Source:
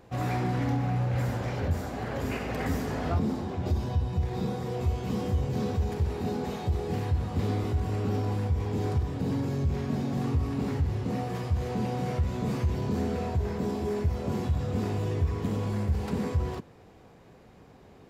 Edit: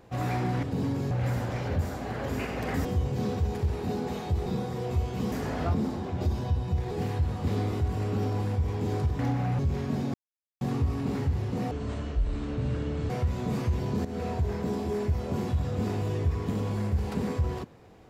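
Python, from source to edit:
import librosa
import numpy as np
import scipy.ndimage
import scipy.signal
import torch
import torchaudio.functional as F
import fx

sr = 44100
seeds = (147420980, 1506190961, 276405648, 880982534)

y = fx.edit(x, sr, fx.swap(start_s=0.63, length_s=0.4, other_s=9.11, other_length_s=0.48),
    fx.swap(start_s=2.77, length_s=1.59, other_s=5.22, other_length_s=1.61),
    fx.insert_silence(at_s=10.14, length_s=0.47),
    fx.speed_span(start_s=11.24, length_s=0.82, speed=0.59),
    fx.fade_in_from(start_s=13.01, length_s=0.27, curve='qsin', floor_db=-13.5), tone=tone)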